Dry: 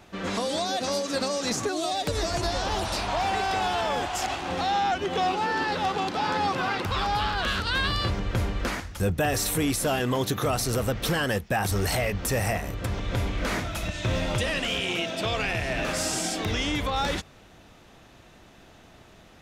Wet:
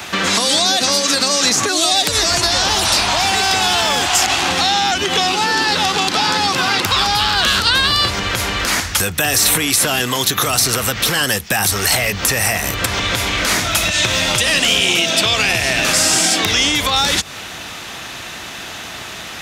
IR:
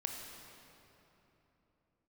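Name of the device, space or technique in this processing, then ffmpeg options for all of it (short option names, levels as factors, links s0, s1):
mastering chain: -filter_complex "[0:a]highpass=59,equalizer=f=560:t=o:w=0.77:g=-2.5,acrossover=split=370|910|4000[s0][s1][s2][s3];[s0]acompressor=threshold=0.0224:ratio=4[s4];[s1]acompressor=threshold=0.01:ratio=4[s5];[s2]acompressor=threshold=0.00891:ratio=4[s6];[s3]acompressor=threshold=0.0112:ratio=4[s7];[s4][s5][s6][s7]amix=inputs=4:normalize=0,acompressor=threshold=0.0126:ratio=2.5,tiltshelf=f=820:g=-7.5,alimiter=level_in=13.3:limit=0.891:release=50:level=0:latency=1,volume=0.891"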